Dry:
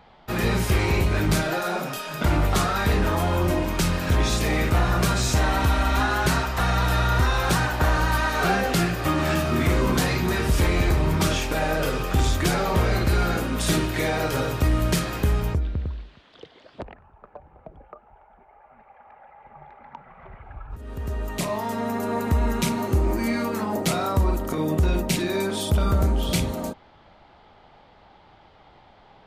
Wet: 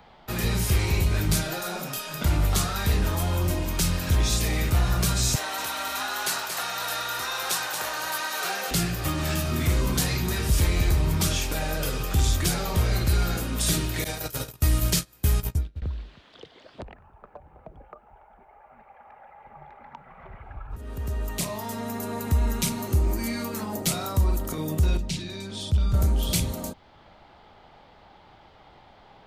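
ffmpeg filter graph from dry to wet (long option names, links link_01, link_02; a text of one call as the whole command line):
ffmpeg -i in.wav -filter_complex "[0:a]asettb=1/sr,asplit=3[link_01][link_02][link_03];[link_01]atrim=end=5.354[link_04];[link_02]atrim=start=5.35:end=8.71,asetpts=PTS-STARTPTS,afade=type=in:duration=0.004:curve=qsin,afade=type=out:start_time=3.356:duration=0.004:curve=qsin,highpass=520,aecho=1:1:229:0.473,atrim=end_sample=148176[link_05];[link_03]atrim=start=8.706[link_06];[link_04][link_05]acrossfade=duration=0.004:curve1=hsin:curve2=qsin[link_07];[link_07][link_06]acrossfade=duration=0.004:curve1=qsin:curve2=hsin,asettb=1/sr,asplit=3[link_08][link_09][link_10];[link_08]atrim=end=14.044[link_11];[link_09]atrim=start=14.04:end=15.82,asetpts=PTS-STARTPTS,afade=type=in:duration=0.004:curve=qsin,afade=type=out:start_time=1.776:duration=0.004:curve=qsin,agate=range=-29dB:threshold=-24dB:ratio=16:release=100:detection=peak,aemphasis=mode=production:type=50kf,acrossover=split=6400[link_12][link_13];[link_13]acompressor=threshold=-33dB:ratio=4:attack=1:release=60[link_14];[link_12][link_14]amix=inputs=2:normalize=0[link_15];[link_10]atrim=start=15.816[link_16];[link_11][link_15]acrossfade=duration=0.004:curve1=hsin:curve2=qsin[link_17];[link_17][link_16]acrossfade=duration=0.004:curve1=qsin:curve2=hsin,asettb=1/sr,asplit=3[link_18][link_19][link_20];[link_18]atrim=end=24.974[link_21];[link_19]atrim=start=24.97:end=25.94,asetpts=PTS-STARTPTS,afade=type=in:duration=0.004:curve=qsin,afade=type=out:start_time=0.966:duration=0.004:curve=qsin,lowpass=4500,acrossover=split=180|3000[link_22][link_23][link_24];[link_23]acompressor=threshold=-38dB:ratio=4:attack=3.2:release=140:knee=2.83:detection=peak[link_25];[link_22][link_25][link_24]amix=inputs=3:normalize=0[link_26];[link_20]atrim=start=25.936[link_27];[link_21][link_26]acrossfade=duration=0.004:curve1=hsin:curve2=qsin[link_28];[link_28][link_27]acrossfade=duration=0.004:curve1=qsin:curve2=hsin,highshelf=frequency=6900:gain=6,acrossover=split=160|3000[link_29][link_30][link_31];[link_30]acompressor=threshold=-44dB:ratio=1.5[link_32];[link_29][link_32][link_31]amix=inputs=3:normalize=0" out.wav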